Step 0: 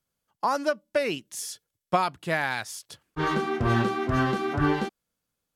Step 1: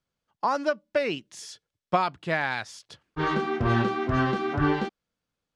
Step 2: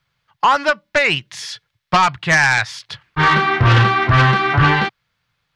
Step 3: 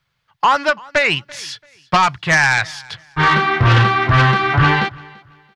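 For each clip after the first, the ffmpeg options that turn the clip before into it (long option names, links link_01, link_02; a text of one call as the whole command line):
ffmpeg -i in.wav -af "lowpass=5100" out.wav
ffmpeg -i in.wav -af "equalizer=frequency=125:width_type=o:width=1:gain=11,equalizer=frequency=250:width_type=o:width=1:gain=-10,equalizer=frequency=500:width_type=o:width=1:gain=-4,equalizer=frequency=1000:width_type=o:width=1:gain=5,equalizer=frequency=2000:width_type=o:width=1:gain=9,equalizer=frequency=4000:width_type=o:width=1:gain=6,equalizer=frequency=8000:width_type=o:width=1:gain=-5,aeval=exprs='0.473*sin(PI/2*2.24*val(0)/0.473)':channel_layout=same,volume=-1dB" out.wav
ffmpeg -i in.wav -af "aecho=1:1:337|674:0.0631|0.0177" out.wav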